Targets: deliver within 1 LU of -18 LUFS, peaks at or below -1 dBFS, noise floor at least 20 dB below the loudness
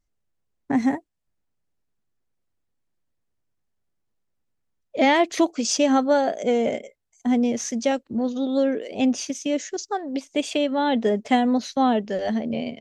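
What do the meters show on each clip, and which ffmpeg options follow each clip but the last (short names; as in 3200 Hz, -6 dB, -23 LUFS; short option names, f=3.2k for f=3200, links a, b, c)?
loudness -23.0 LUFS; peak -7.5 dBFS; loudness target -18.0 LUFS
-> -af "volume=5dB"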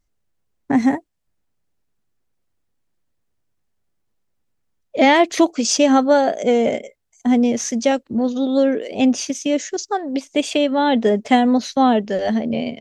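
loudness -18.0 LUFS; peak -2.5 dBFS; noise floor -71 dBFS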